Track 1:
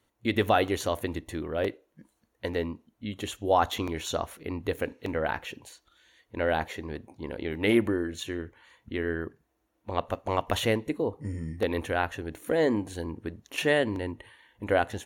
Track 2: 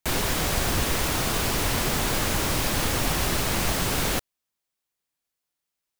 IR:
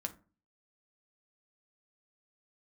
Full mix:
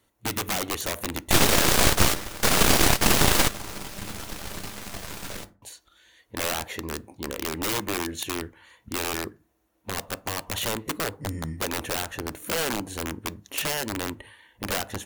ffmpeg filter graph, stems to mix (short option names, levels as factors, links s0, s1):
-filter_complex "[0:a]acompressor=threshold=0.0447:ratio=6,aeval=exprs='(mod(18.8*val(0)+1,2)-1)/18.8':c=same,volume=1.12,asplit=3[s0][s1][s2];[s0]atrim=end=3.28,asetpts=PTS-STARTPTS,afade=t=out:st=3.276:d=0.004:c=hsin[s3];[s1]atrim=start=3.28:end=5.62,asetpts=PTS-STARTPTS,volume=0[s4];[s2]atrim=start=5.62,asetpts=PTS-STARTPTS,afade=t=in:d=0.004:c=hsin[s5];[s3][s4][s5]concat=n=3:v=0:a=1,asplit=3[s6][s7][s8];[s7]volume=0.355[s9];[1:a]highshelf=f=9600:g=-9,aeval=exprs='0.282*(cos(1*acos(clip(val(0)/0.282,-1,1)))-cos(1*PI/2))+0.0447*(cos(3*acos(clip(val(0)/0.282,-1,1)))-cos(3*PI/2))+0.112*(cos(6*acos(clip(val(0)/0.282,-1,1)))-cos(6*PI/2))+0.0158*(cos(8*acos(clip(val(0)/0.282,-1,1)))-cos(8*PI/2))':c=same,adelay=1250,volume=1.33,asplit=2[s10][s11];[s11]volume=0.141[s12];[s8]apad=whole_len=319332[s13];[s10][s13]sidechaingate=range=0.0282:threshold=0.001:ratio=16:detection=peak[s14];[2:a]atrim=start_sample=2205[s15];[s9][s12]amix=inputs=2:normalize=0[s16];[s16][s15]afir=irnorm=-1:irlink=0[s17];[s6][s14][s17]amix=inputs=3:normalize=0,highshelf=f=7400:g=6"